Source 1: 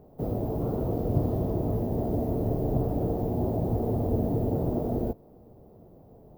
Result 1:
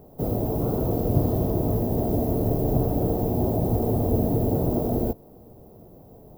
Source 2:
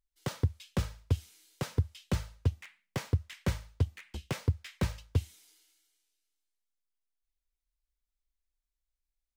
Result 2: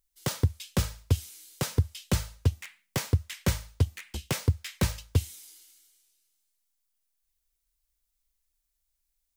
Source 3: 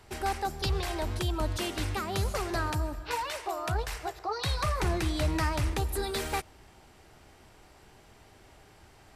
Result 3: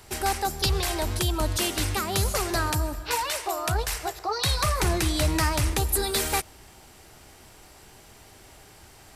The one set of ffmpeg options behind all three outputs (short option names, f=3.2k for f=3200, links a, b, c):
-af "highshelf=f=5.1k:g=11.5,volume=4dB"